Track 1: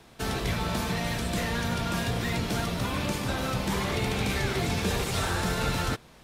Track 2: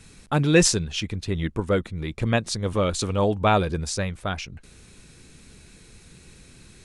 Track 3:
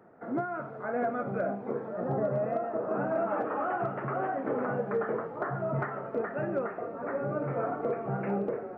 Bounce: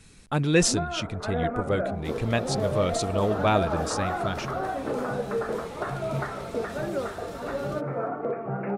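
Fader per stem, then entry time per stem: -15.0, -3.5, +1.5 dB; 1.85, 0.00, 0.40 s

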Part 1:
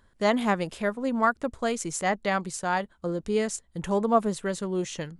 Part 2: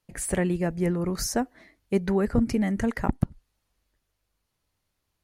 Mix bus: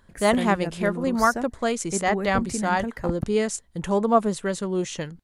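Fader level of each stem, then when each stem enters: +3.0, -5.0 dB; 0.00, 0.00 s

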